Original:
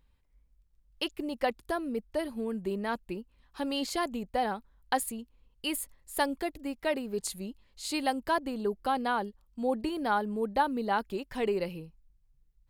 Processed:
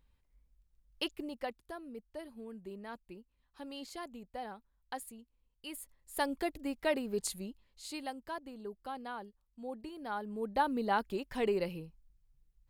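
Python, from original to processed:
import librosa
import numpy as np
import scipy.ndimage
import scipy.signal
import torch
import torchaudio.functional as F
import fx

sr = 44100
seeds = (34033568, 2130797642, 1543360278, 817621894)

y = fx.gain(x, sr, db=fx.line((1.06, -3.0), (1.63, -13.0), (5.65, -13.0), (6.44, -1.5), (7.26, -1.5), (8.19, -13.0), (9.97, -13.0), (10.71, -2.0)))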